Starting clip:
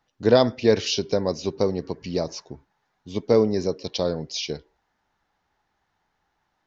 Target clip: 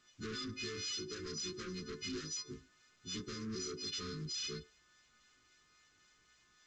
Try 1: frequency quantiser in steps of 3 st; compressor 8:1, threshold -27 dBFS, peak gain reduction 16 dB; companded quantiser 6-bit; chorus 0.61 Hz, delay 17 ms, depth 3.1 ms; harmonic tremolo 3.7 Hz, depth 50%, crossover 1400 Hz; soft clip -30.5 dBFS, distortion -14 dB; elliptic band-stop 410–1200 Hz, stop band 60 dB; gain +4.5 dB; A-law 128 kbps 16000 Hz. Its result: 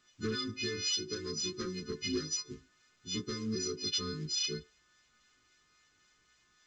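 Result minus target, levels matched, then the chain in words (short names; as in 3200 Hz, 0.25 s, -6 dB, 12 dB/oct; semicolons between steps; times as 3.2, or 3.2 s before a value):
soft clip: distortion -9 dB
frequency quantiser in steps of 3 st; compressor 8:1, threshold -27 dBFS, peak gain reduction 16 dB; companded quantiser 6-bit; chorus 0.61 Hz, delay 17 ms, depth 3.1 ms; harmonic tremolo 3.7 Hz, depth 50%, crossover 1400 Hz; soft clip -42.5 dBFS, distortion -5 dB; elliptic band-stop 410–1200 Hz, stop band 60 dB; gain +4.5 dB; A-law 128 kbps 16000 Hz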